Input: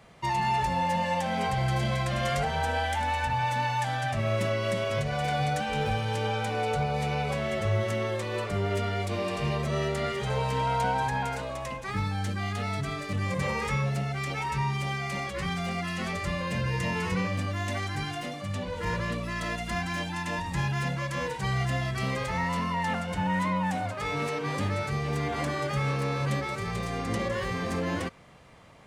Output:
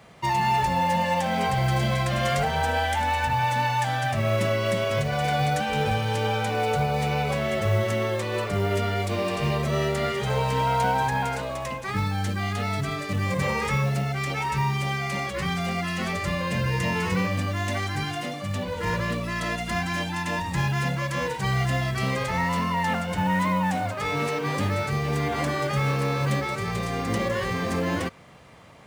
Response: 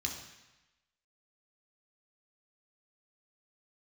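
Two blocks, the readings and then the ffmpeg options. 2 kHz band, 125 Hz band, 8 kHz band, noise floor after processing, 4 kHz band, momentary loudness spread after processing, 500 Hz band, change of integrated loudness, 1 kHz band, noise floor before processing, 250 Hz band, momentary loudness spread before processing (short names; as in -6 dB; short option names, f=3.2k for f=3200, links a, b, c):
+4.0 dB, +3.5 dB, +4.5 dB, -32 dBFS, +4.0 dB, 4 LU, +4.0 dB, +4.0 dB, +4.0 dB, -36 dBFS, +4.0 dB, 4 LU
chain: -af "highpass=59,acrusher=bits=7:mode=log:mix=0:aa=0.000001,volume=4dB"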